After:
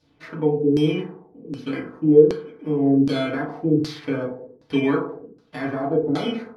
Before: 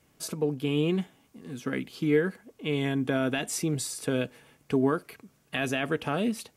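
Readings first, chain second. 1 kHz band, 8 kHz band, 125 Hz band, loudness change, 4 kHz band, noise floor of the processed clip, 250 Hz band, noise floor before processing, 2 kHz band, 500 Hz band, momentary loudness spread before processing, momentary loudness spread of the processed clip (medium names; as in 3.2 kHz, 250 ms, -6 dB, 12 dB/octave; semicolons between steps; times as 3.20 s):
+4.0 dB, under -10 dB, +5.0 dB, +7.5 dB, +1.5 dB, -59 dBFS, +8.0 dB, -66 dBFS, 0.0 dB, +9.0 dB, 11 LU, 17 LU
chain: bit-reversed sample order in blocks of 16 samples; FDN reverb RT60 0.68 s, low-frequency decay 0.85×, high-frequency decay 0.45×, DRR -5 dB; LFO low-pass saw down 1.3 Hz 330–5000 Hz; trim -3.5 dB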